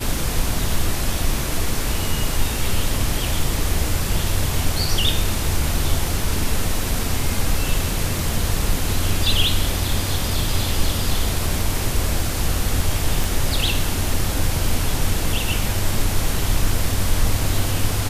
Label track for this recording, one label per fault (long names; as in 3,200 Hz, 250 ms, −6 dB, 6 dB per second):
13.240000	13.240000	click